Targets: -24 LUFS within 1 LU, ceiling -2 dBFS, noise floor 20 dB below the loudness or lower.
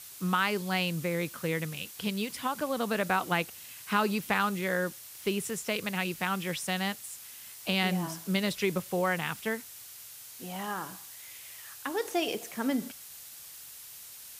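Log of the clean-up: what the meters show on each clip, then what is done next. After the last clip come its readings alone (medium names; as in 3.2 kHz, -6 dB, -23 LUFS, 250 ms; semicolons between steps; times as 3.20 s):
noise floor -48 dBFS; noise floor target -52 dBFS; loudness -31.5 LUFS; peak level -14.0 dBFS; loudness target -24.0 LUFS
-> noise reduction 6 dB, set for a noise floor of -48 dBFS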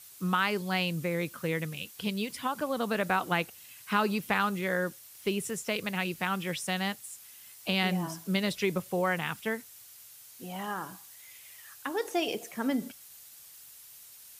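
noise floor -52 dBFS; loudness -31.5 LUFS; peak level -14.0 dBFS; loudness target -24.0 LUFS
-> trim +7.5 dB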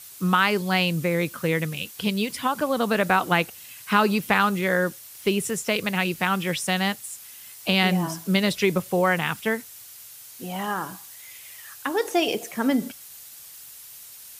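loudness -24.0 LUFS; peak level -6.5 dBFS; noise floor -44 dBFS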